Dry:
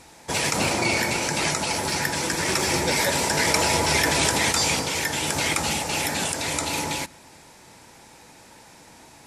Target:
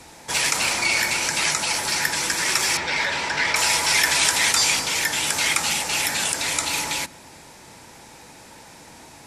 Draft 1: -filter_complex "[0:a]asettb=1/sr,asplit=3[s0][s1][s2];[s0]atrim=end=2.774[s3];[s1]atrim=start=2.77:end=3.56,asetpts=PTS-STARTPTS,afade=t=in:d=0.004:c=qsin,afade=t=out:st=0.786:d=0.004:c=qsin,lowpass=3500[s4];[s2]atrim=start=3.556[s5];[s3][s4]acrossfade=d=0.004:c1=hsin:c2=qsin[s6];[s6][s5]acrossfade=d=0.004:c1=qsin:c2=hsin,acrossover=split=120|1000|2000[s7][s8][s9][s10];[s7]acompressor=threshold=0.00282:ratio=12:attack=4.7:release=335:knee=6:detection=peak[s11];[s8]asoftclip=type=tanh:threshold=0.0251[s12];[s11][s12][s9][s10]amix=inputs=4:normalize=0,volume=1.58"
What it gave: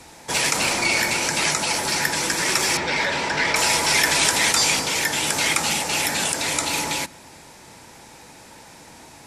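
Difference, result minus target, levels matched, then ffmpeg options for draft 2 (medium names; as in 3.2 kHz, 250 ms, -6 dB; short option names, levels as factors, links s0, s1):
saturation: distortion -4 dB
-filter_complex "[0:a]asettb=1/sr,asplit=3[s0][s1][s2];[s0]atrim=end=2.774[s3];[s1]atrim=start=2.77:end=3.56,asetpts=PTS-STARTPTS,afade=t=in:d=0.004:c=qsin,afade=t=out:st=0.786:d=0.004:c=qsin,lowpass=3500[s4];[s2]atrim=start=3.556[s5];[s3][s4]acrossfade=d=0.004:c1=hsin:c2=qsin[s6];[s6][s5]acrossfade=d=0.004:c1=qsin:c2=hsin,acrossover=split=120|1000|2000[s7][s8][s9][s10];[s7]acompressor=threshold=0.00282:ratio=12:attack=4.7:release=335:knee=6:detection=peak[s11];[s8]asoftclip=type=tanh:threshold=0.01[s12];[s11][s12][s9][s10]amix=inputs=4:normalize=0,volume=1.58"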